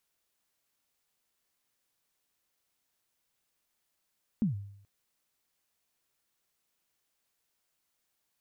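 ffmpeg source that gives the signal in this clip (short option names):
-f lavfi -i "aevalsrc='0.0794*pow(10,-3*t/0.7)*sin(2*PI*(240*0.128/log(100/240)*(exp(log(100/240)*min(t,0.128)/0.128)-1)+100*max(t-0.128,0)))':d=0.43:s=44100"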